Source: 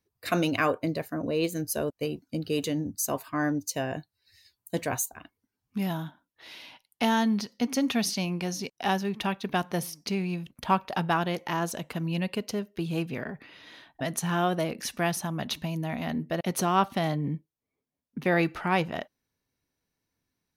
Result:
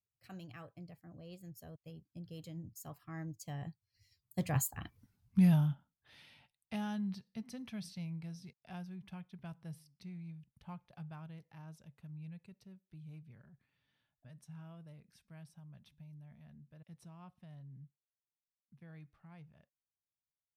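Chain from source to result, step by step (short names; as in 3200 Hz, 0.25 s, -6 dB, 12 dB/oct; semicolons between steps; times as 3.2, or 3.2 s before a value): Doppler pass-by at 5.03, 26 m/s, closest 2.4 m; resonant low shelf 210 Hz +12.5 dB, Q 1.5; gain +7 dB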